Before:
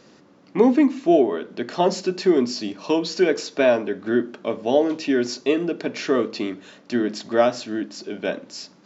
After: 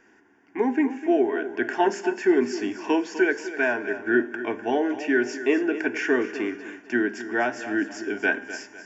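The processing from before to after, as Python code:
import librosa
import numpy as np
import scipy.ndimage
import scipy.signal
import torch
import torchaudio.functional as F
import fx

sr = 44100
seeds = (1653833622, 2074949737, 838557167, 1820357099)

y = fx.peak_eq(x, sr, hz=1500.0, db=14.0, octaves=0.62)
y = fx.rider(y, sr, range_db=5, speed_s=0.5)
y = fx.fixed_phaser(y, sr, hz=830.0, stages=8)
y = fx.comb_fb(y, sr, f0_hz=200.0, decay_s=1.2, harmonics='all', damping=0.0, mix_pct=60)
y = fx.echo_feedback(y, sr, ms=251, feedback_pct=37, wet_db=-13)
y = y * librosa.db_to_amplitude(6.0)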